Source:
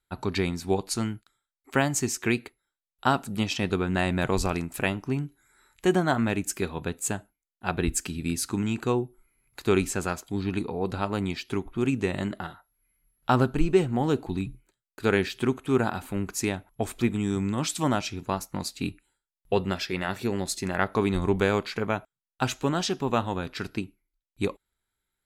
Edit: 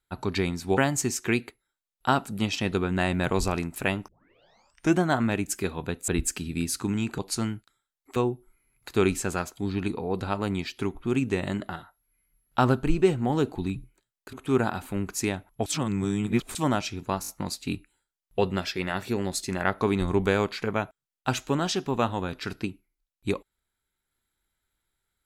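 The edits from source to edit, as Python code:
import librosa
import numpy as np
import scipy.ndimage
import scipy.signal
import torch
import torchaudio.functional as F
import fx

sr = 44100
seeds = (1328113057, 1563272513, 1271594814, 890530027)

y = fx.edit(x, sr, fx.move(start_s=0.77, length_s=0.98, to_s=8.87),
    fx.tape_start(start_s=5.06, length_s=0.92),
    fx.cut(start_s=7.06, length_s=0.71),
    fx.cut(start_s=15.04, length_s=0.49),
    fx.reverse_span(start_s=16.86, length_s=0.89),
    fx.stutter(start_s=18.42, slice_s=0.02, count=4), tone=tone)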